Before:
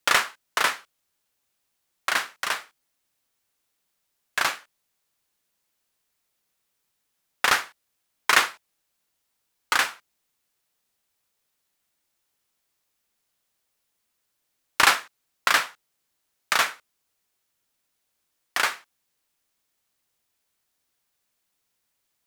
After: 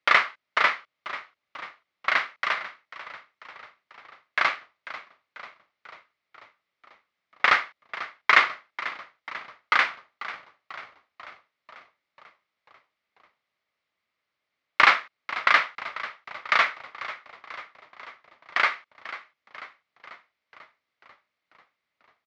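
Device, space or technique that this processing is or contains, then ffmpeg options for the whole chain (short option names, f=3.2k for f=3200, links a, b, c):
frequency-shifting delay pedal into a guitar cabinet: -filter_complex "[0:a]asplit=8[a][b][c][d][e][f][g][h];[b]adelay=492,afreqshift=-67,volume=-15dB[i];[c]adelay=984,afreqshift=-134,volume=-19.2dB[j];[d]adelay=1476,afreqshift=-201,volume=-23.3dB[k];[e]adelay=1968,afreqshift=-268,volume=-27.5dB[l];[f]adelay=2460,afreqshift=-335,volume=-31.6dB[m];[g]adelay=2952,afreqshift=-402,volume=-35.8dB[n];[h]adelay=3444,afreqshift=-469,volume=-39.9dB[o];[a][i][j][k][l][m][n][o]amix=inputs=8:normalize=0,highpass=79,equalizer=f=610:t=q:w=4:g=5,equalizer=f=1.2k:t=q:w=4:g=7,equalizer=f=2.1k:t=q:w=4:g=10,lowpass=f=4.5k:w=0.5412,lowpass=f=4.5k:w=1.3066,volume=-3.5dB"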